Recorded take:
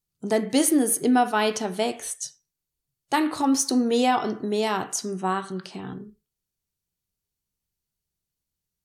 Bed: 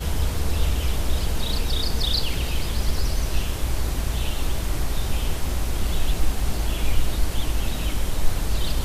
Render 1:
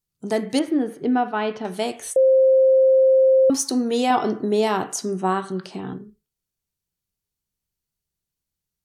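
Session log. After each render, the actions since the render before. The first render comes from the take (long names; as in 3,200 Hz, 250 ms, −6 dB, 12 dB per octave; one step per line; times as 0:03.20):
0:00.59–0:01.65: high-frequency loss of the air 350 metres
0:02.16–0:03.50: beep over 527 Hz −11.5 dBFS
0:04.10–0:05.97: parametric band 380 Hz +5.5 dB 2.9 octaves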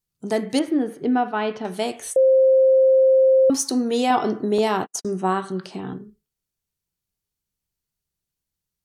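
0:04.58–0:05.05: noise gate −29 dBFS, range −55 dB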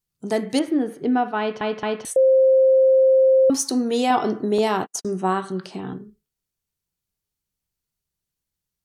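0:01.39: stutter in place 0.22 s, 3 plays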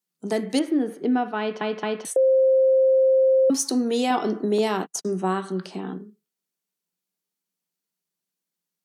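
elliptic high-pass filter 170 Hz
dynamic equaliser 840 Hz, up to −4 dB, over −27 dBFS, Q 0.78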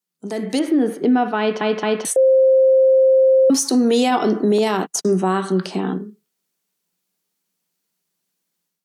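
brickwall limiter −19 dBFS, peak gain reduction 8 dB
automatic gain control gain up to 9.5 dB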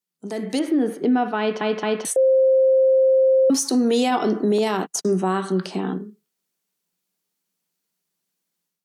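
level −3 dB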